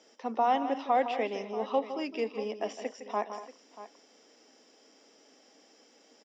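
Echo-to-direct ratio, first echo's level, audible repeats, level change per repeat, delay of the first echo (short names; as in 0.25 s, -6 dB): -8.5 dB, -11.0 dB, 3, no steady repeat, 0.16 s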